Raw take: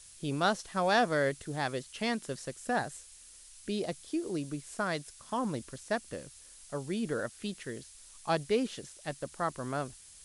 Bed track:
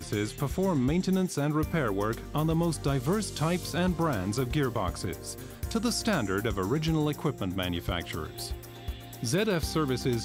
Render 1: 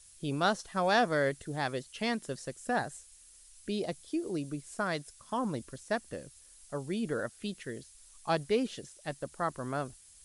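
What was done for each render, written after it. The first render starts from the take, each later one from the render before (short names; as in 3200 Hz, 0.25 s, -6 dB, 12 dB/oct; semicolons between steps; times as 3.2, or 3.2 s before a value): denoiser 6 dB, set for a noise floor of -54 dBFS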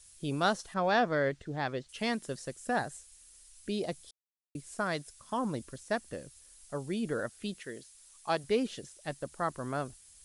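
0.74–1.89 air absorption 130 m; 4.11–4.55 mute; 7.58–8.44 low shelf 170 Hz -12 dB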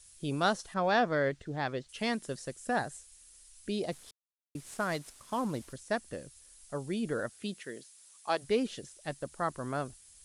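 3.92–5.73 CVSD 64 kbps; 7.33–8.41 HPF 81 Hz -> 280 Hz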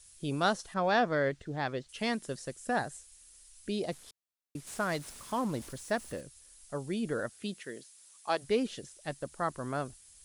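4.67–6.21 zero-crossing step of -47 dBFS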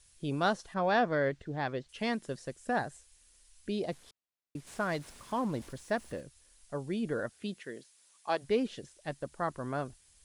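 high shelf 5500 Hz -10 dB; notch 1300 Hz, Q 21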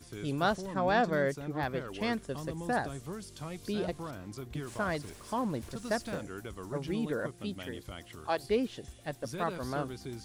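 add bed track -13.5 dB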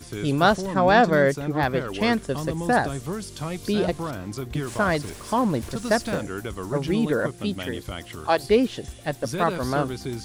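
gain +10.5 dB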